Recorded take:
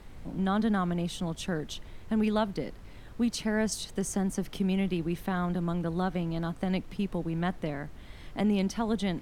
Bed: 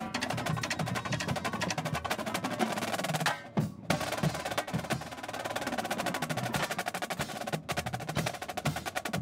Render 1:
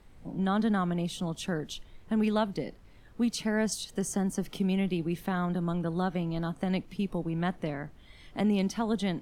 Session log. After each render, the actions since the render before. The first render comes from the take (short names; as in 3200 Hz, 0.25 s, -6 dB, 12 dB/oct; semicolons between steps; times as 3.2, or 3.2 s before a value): noise print and reduce 8 dB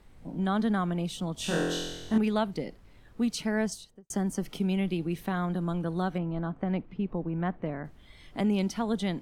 1.35–2.18 flutter echo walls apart 4 m, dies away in 1.2 s; 3.57–4.1 studio fade out; 6.18–7.85 LPF 1800 Hz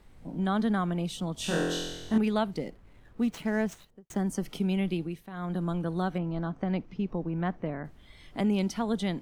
2.57–4.19 median filter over 9 samples; 4.97–5.57 dip -13 dB, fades 0.26 s; 6.24–7.62 bell 5800 Hz +14 dB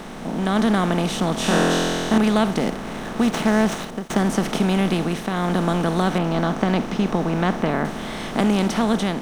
per-bin compression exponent 0.4; AGC gain up to 5.5 dB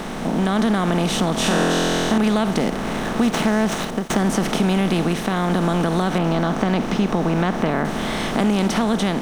in parallel at +0.5 dB: limiter -14 dBFS, peak gain reduction 9.5 dB; on the sum: compressor 2:1, threshold -18 dBFS, peak gain reduction 5 dB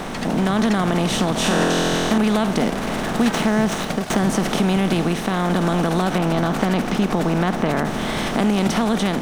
add bed +0.5 dB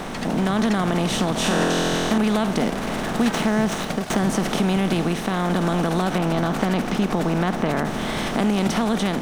gain -2 dB